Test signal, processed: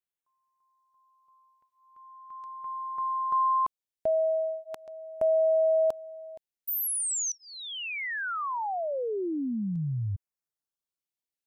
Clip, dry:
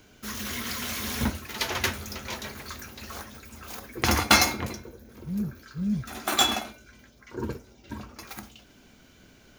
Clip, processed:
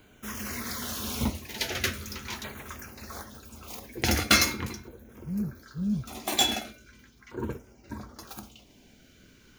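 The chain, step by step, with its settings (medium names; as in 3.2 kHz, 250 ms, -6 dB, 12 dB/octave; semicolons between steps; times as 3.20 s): LFO notch saw down 0.41 Hz 510–5700 Hz; trim -1 dB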